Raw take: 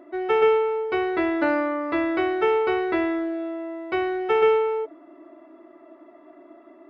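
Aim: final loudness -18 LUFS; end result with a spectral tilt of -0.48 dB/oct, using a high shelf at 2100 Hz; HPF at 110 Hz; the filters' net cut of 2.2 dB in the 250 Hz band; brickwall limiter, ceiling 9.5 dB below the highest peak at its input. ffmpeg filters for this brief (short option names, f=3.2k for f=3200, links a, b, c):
-af "highpass=110,equalizer=f=250:t=o:g=-4,highshelf=f=2.1k:g=8.5,volume=8dB,alimiter=limit=-9.5dB:level=0:latency=1"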